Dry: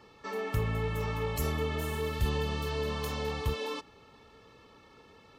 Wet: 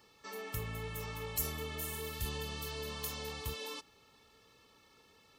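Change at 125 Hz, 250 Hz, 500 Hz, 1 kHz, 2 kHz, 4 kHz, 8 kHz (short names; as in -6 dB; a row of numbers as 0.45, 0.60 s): -10.5, -10.5, -10.0, -9.0, -6.0, -2.5, +3.0 dB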